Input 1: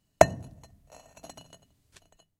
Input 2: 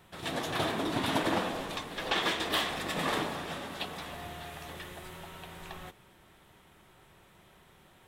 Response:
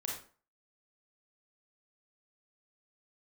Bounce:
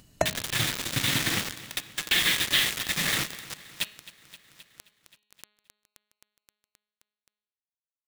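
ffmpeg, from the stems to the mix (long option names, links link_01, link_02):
-filter_complex "[0:a]volume=-6dB[link_01];[1:a]equalizer=frequency=125:width_type=o:width=1:gain=12,equalizer=frequency=500:width_type=o:width=1:gain=-7,equalizer=frequency=1000:width_type=o:width=1:gain=-7,equalizer=frequency=2000:width_type=o:width=1:gain=12,equalizer=frequency=4000:width_type=o:width=1:gain=9,acrusher=bits=3:mix=0:aa=0.000001,volume=-2dB,asplit=2[link_02][link_03];[link_03]volume=-17.5dB,aecho=0:1:263|526|789|1052|1315|1578|1841:1|0.51|0.26|0.133|0.0677|0.0345|0.0176[link_04];[link_01][link_02][link_04]amix=inputs=3:normalize=0,equalizer=frequency=780:width=1.6:gain=-4,bandreject=frequency=209.3:width_type=h:width=4,bandreject=frequency=418.6:width_type=h:width=4,bandreject=frequency=627.9:width_type=h:width=4,bandreject=frequency=837.2:width_type=h:width=4,bandreject=frequency=1046.5:width_type=h:width=4,bandreject=frequency=1255.8:width_type=h:width=4,bandreject=frequency=1465.1:width_type=h:width=4,bandreject=frequency=1674.4:width_type=h:width=4,bandreject=frequency=1883.7:width_type=h:width=4,bandreject=frequency=2093:width_type=h:width=4,bandreject=frequency=2302.3:width_type=h:width=4,bandreject=frequency=2511.6:width_type=h:width=4,bandreject=frequency=2720.9:width_type=h:width=4,bandreject=frequency=2930.2:width_type=h:width=4,bandreject=frequency=3139.5:width_type=h:width=4,bandreject=frequency=3348.8:width_type=h:width=4,bandreject=frequency=3558.1:width_type=h:width=4,bandreject=frequency=3767.4:width_type=h:width=4,bandreject=frequency=3976.7:width_type=h:width=4,bandreject=frequency=4186:width_type=h:width=4,bandreject=frequency=4395.3:width_type=h:width=4,acompressor=mode=upward:threshold=-39dB:ratio=2.5"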